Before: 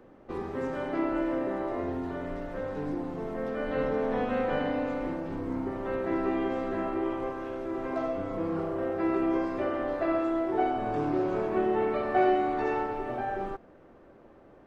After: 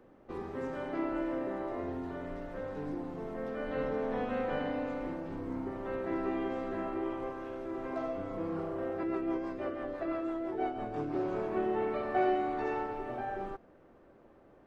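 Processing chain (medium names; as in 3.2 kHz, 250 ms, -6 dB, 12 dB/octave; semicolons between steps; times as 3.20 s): 9.03–11.15 s: rotary cabinet horn 6 Hz; trim -5 dB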